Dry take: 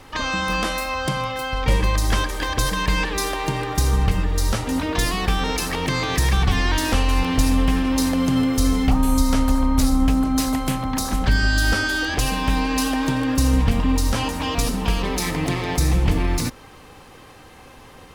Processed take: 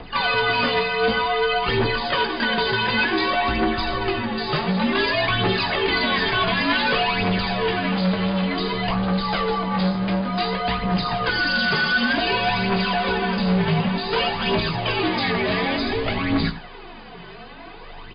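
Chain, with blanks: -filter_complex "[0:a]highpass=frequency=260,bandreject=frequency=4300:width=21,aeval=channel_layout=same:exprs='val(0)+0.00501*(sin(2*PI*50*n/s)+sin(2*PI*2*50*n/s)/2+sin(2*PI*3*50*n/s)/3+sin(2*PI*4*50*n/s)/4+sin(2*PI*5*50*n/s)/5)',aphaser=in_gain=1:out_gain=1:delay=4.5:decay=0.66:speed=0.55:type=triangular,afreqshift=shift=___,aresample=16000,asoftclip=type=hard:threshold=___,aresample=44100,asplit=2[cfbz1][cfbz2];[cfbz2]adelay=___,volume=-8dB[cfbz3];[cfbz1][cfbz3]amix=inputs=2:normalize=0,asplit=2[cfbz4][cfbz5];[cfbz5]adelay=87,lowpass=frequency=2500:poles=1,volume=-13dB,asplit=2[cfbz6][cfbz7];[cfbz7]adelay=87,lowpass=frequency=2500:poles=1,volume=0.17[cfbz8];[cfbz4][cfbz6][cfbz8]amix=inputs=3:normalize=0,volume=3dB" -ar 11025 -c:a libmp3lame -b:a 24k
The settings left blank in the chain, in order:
-74, -19.5dB, 18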